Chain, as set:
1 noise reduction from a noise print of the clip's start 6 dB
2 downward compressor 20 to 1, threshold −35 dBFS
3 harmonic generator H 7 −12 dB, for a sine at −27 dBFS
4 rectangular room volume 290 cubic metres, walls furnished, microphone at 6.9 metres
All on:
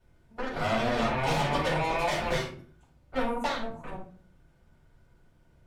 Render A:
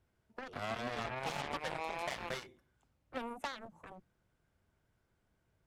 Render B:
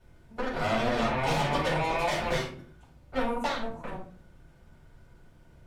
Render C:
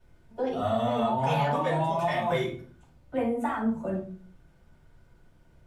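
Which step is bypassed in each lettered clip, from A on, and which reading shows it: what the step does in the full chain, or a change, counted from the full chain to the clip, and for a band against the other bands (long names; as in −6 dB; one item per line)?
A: 4, echo-to-direct ratio 8.0 dB to none audible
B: 1, change in momentary loudness spread −2 LU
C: 3, change in crest factor −2.0 dB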